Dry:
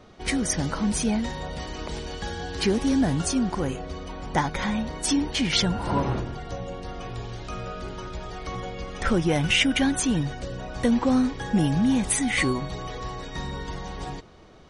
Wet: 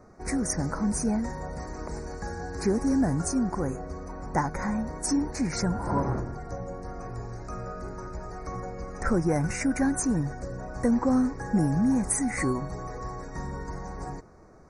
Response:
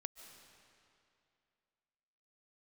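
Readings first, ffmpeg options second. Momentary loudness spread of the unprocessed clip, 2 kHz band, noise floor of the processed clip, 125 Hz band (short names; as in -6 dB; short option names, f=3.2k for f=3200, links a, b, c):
14 LU, -8.0 dB, -41 dBFS, -2.0 dB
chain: -af "asuperstop=centerf=3200:order=4:qfactor=0.82,volume=-2dB"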